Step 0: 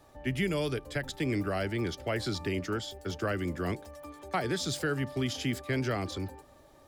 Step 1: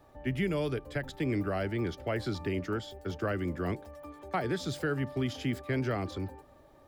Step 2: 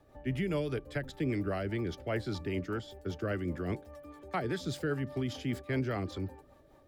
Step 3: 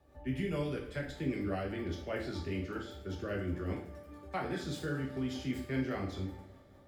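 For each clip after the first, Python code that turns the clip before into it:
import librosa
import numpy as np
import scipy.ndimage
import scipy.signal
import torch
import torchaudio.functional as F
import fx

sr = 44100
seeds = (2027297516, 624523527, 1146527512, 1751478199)

y1 = fx.peak_eq(x, sr, hz=7700.0, db=-9.5, octaves=2.4)
y2 = fx.rotary(y1, sr, hz=5.0)
y3 = fx.rev_double_slope(y2, sr, seeds[0], early_s=0.49, late_s=3.0, knee_db=-22, drr_db=-1.5)
y3 = y3 * 10.0 ** (-6.0 / 20.0)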